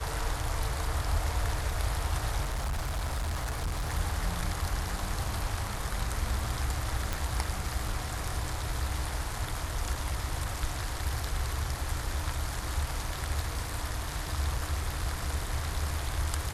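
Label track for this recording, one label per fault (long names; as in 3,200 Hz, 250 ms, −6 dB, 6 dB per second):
2.440000	3.940000	clipping −28 dBFS
7.130000	7.130000	click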